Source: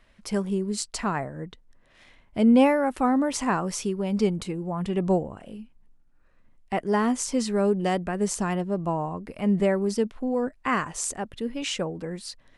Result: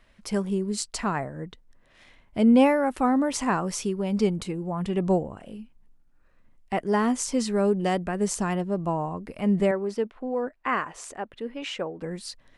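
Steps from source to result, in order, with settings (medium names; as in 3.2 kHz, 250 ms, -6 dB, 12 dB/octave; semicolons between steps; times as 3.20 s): 9.71–12.02 s: tone controls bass -11 dB, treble -13 dB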